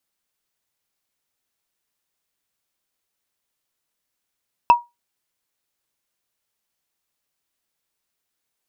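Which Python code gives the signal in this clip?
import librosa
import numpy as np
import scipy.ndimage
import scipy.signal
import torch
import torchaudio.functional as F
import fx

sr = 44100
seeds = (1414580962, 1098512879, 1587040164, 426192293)

y = fx.strike_wood(sr, length_s=0.45, level_db=-4.0, body='bar', hz=955.0, decay_s=0.2, tilt_db=12, modes=5)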